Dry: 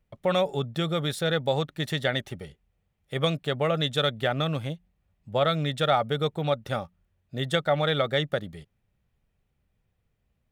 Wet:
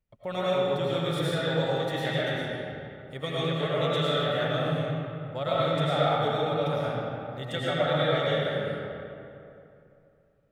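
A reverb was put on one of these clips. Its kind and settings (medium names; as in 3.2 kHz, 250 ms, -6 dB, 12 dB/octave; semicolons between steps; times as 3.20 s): algorithmic reverb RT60 2.8 s, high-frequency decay 0.55×, pre-delay 65 ms, DRR -9 dB; trim -10 dB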